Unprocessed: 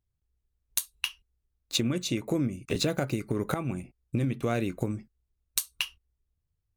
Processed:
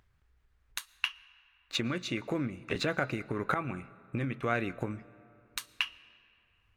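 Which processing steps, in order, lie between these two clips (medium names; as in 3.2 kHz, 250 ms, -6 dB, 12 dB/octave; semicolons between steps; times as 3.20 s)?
low-pass 3.5 kHz 6 dB/octave; peaking EQ 1.6 kHz +13.5 dB 2 oct; upward compressor, threshold -48 dBFS; on a send: reverberation RT60 2.9 s, pre-delay 75 ms, DRR 20.5 dB; on the sum: trim -6.5 dB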